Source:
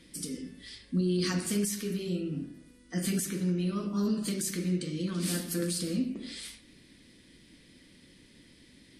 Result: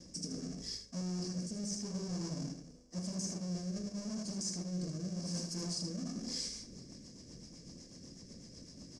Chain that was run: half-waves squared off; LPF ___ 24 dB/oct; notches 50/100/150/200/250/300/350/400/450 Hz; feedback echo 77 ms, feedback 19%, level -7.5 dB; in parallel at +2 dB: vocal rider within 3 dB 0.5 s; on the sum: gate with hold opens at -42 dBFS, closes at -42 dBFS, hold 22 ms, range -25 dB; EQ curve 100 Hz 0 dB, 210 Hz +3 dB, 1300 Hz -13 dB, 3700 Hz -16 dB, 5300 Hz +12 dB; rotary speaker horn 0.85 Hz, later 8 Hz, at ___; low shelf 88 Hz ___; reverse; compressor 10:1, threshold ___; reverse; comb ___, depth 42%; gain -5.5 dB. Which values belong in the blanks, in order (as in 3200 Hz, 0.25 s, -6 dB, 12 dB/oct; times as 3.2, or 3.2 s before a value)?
5600 Hz, 6.05, -8.5 dB, -30 dBFS, 1.8 ms